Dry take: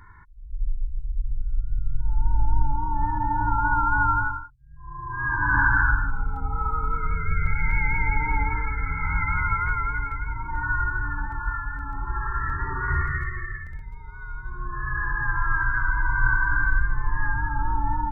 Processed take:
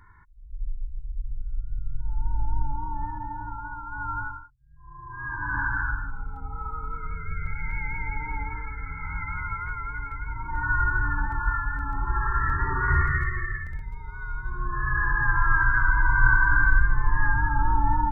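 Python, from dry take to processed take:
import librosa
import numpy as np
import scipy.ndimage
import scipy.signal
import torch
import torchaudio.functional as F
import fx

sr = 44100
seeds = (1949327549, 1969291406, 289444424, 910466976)

y = fx.gain(x, sr, db=fx.line((2.87, -5.0), (3.84, -16.0), (4.19, -7.5), (9.78, -7.5), (10.94, 2.5)))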